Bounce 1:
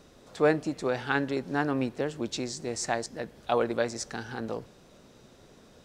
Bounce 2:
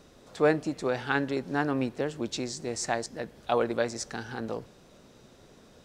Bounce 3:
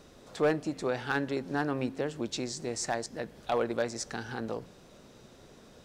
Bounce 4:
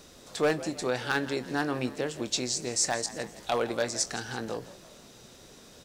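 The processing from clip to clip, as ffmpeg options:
-af anull
-filter_complex "[0:a]bandreject=f=89.39:t=h:w=4,bandreject=f=178.78:t=h:w=4,bandreject=f=268.17:t=h:w=4,asplit=2[s0][s1];[s1]acompressor=threshold=0.0158:ratio=6,volume=0.75[s2];[s0][s2]amix=inputs=2:normalize=0,asoftclip=type=hard:threshold=0.168,volume=0.631"
-filter_complex "[0:a]highshelf=f=2800:g=10.5,asplit=2[s0][s1];[s1]adelay=24,volume=0.224[s2];[s0][s2]amix=inputs=2:normalize=0,asplit=5[s3][s4][s5][s6][s7];[s4]adelay=166,afreqshift=69,volume=0.15[s8];[s5]adelay=332,afreqshift=138,volume=0.0692[s9];[s6]adelay=498,afreqshift=207,volume=0.0316[s10];[s7]adelay=664,afreqshift=276,volume=0.0146[s11];[s3][s8][s9][s10][s11]amix=inputs=5:normalize=0"

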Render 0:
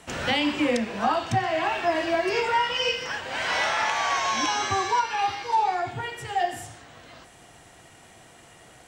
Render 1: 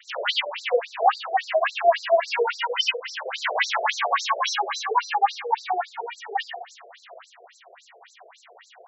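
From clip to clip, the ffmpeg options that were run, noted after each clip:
-af "bass=f=250:g=-1,treble=f=4000:g=-3,afftfilt=real='re*between(b*sr/1024,490*pow(5600/490,0.5+0.5*sin(2*PI*3.6*pts/sr))/1.41,490*pow(5600/490,0.5+0.5*sin(2*PI*3.6*pts/sr))*1.41)':imag='im*between(b*sr/1024,490*pow(5600/490,0.5+0.5*sin(2*PI*3.6*pts/sr))/1.41,490*pow(5600/490,0.5+0.5*sin(2*PI*3.6*pts/sr))*1.41)':win_size=1024:overlap=0.75,volume=2.51"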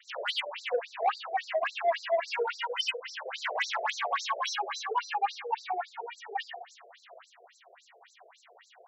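-af "asoftclip=type=tanh:threshold=0.282,volume=0.447"

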